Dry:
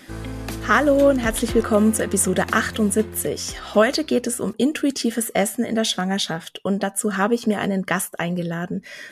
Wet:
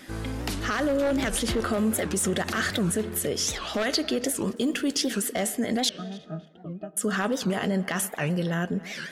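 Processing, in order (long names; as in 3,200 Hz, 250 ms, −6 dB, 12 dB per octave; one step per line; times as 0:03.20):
wavefolder on the positive side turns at −10.5 dBFS
0:05.90–0:06.97: resonances in every octave D#, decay 0.15 s
convolution reverb RT60 1.6 s, pre-delay 4 ms, DRR 19.5 dB
in parallel at −11 dB: soft clipping −16.5 dBFS, distortion −11 dB
on the sum: brickwall limiter −15 dBFS, peak gain reduction 11.5 dB
dynamic equaliser 4,100 Hz, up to +5 dB, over −43 dBFS, Q 0.8
on a send: tape delay 276 ms, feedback 42%, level −16.5 dB, low-pass 2,000 Hz
0:04.55–0:04.96: on the sum: surface crackle 270 per second −40 dBFS
wow of a warped record 78 rpm, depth 250 cents
level −3.5 dB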